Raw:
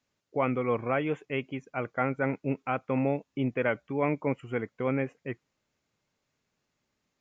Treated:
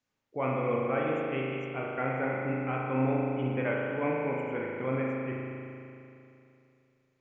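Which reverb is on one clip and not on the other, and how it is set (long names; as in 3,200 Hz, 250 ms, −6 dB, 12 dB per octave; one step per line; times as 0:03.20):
spring reverb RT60 2.8 s, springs 38 ms, chirp 65 ms, DRR −3.5 dB
level −5.5 dB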